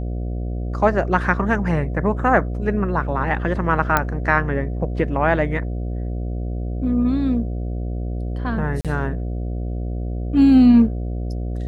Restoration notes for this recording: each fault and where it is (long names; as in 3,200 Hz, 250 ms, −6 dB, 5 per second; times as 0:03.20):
mains buzz 60 Hz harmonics 12 −25 dBFS
0:03.97: click −3 dBFS
0:08.81–0:08.85: drop-out 37 ms